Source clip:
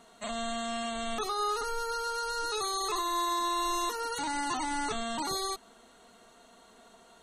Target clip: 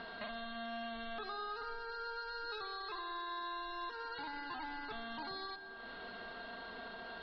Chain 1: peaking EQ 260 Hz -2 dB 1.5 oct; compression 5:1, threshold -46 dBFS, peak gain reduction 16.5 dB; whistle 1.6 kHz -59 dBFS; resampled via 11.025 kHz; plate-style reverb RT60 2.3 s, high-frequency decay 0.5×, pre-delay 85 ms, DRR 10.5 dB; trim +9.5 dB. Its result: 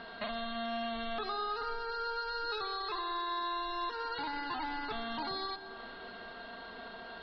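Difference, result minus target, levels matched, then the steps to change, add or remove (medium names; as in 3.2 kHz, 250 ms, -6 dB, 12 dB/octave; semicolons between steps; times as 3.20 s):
compression: peak gain reduction -7 dB
change: compression 5:1, threshold -54.5 dBFS, peak gain reduction 23 dB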